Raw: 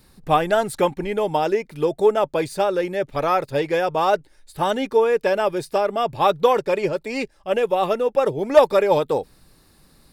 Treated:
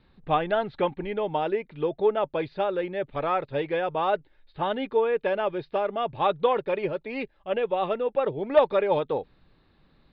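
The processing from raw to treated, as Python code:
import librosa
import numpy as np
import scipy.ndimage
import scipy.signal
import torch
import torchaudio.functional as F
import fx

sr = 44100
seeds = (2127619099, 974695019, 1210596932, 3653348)

y = scipy.signal.sosfilt(scipy.signal.butter(8, 3900.0, 'lowpass', fs=sr, output='sos'), x)
y = y * librosa.db_to_amplitude(-6.0)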